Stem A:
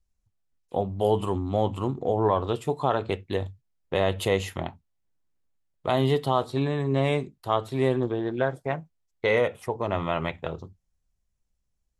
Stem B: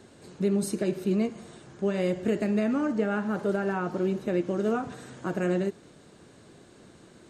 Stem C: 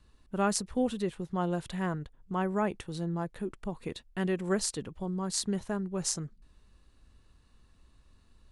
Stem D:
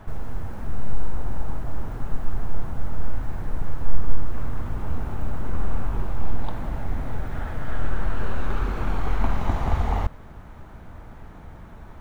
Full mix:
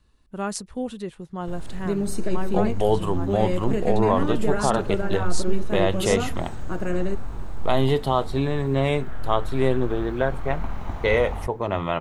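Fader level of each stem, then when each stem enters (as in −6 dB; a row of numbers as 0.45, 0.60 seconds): +2.0, 0.0, −0.5, −7.0 decibels; 1.80, 1.45, 0.00, 1.40 seconds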